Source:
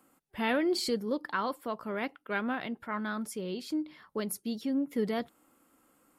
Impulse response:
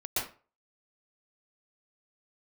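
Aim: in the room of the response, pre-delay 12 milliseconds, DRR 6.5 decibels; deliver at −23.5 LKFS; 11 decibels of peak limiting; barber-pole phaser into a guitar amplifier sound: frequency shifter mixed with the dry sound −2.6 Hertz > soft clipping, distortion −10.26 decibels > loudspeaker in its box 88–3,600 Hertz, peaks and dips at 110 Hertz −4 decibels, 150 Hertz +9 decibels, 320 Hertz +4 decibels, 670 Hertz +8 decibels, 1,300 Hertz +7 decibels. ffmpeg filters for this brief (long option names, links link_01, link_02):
-filter_complex "[0:a]alimiter=level_in=5dB:limit=-24dB:level=0:latency=1,volume=-5dB,asplit=2[link_01][link_02];[1:a]atrim=start_sample=2205,adelay=12[link_03];[link_02][link_03]afir=irnorm=-1:irlink=0,volume=-13dB[link_04];[link_01][link_04]amix=inputs=2:normalize=0,asplit=2[link_05][link_06];[link_06]afreqshift=-2.6[link_07];[link_05][link_07]amix=inputs=2:normalize=1,asoftclip=threshold=-39.5dB,highpass=88,equalizer=frequency=110:width_type=q:width=4:gain=-4,equalizer=frequency=150:width_type=q:width=4:gain=9,equalizer=frequency=320:width_type=q:width=4:gain=4,equalizer=frequency=670:width_type=q:width=4:gain=8,equalizer=frequency=1300:width_type=q:width=4:gain=7,lowpass=frequency=3600:width=0.5412,lowpass=frequency=3600:width=1.3066,volume=19dB"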